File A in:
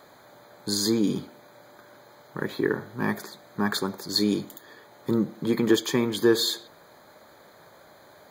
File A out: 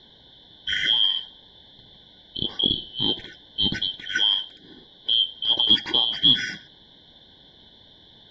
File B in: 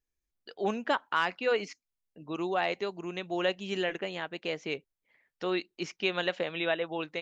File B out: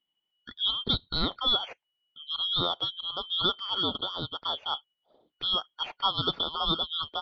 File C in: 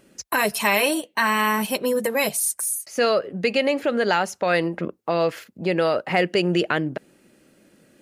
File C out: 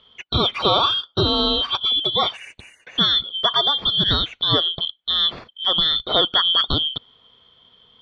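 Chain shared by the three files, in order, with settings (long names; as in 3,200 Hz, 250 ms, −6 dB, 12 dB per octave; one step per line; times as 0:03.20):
band-splitting scrambler in four parts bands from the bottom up 2413
low-pass filter 3,400 Hz 24 dB per octave
level +4.5 dB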